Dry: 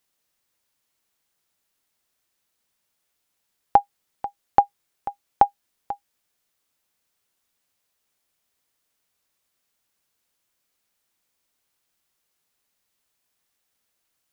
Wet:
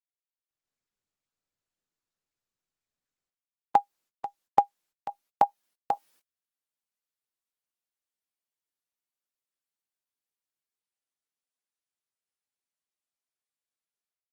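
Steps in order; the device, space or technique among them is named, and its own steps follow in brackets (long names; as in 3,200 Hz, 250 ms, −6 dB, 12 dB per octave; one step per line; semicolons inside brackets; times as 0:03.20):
video call (high-pass filter 170 Hz 12 dB per octave; automatic gain control gain up to 16.5 dB; noise gate −53 dBFS, range −30 dB; level −6 dB; Opus 16 kbit/s 48,000 Hz)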